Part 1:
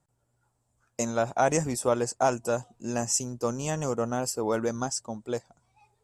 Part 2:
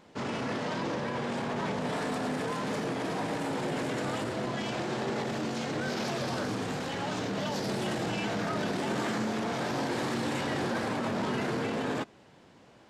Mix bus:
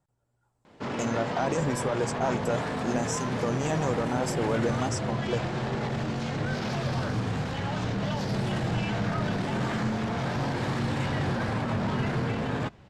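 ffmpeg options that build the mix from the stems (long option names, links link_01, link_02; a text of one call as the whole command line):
ffmpeg -i stem1.wav -i stem2.wav -filter_complex "[0:a]alimiter=limit=-20.5dB:level=0:latency=1,volume=-2dB[link_01];[1:a]asubboost=boost=6:cutoff=120,adelay=650,volume=-2dB[link_02];[link_01][link_02]amix=inputs=2:normalize=0,lowpass=frequency=3800:poles=1,dynaudnorm=framelen=210:gausssize=5:maxgain=4dB" out.wav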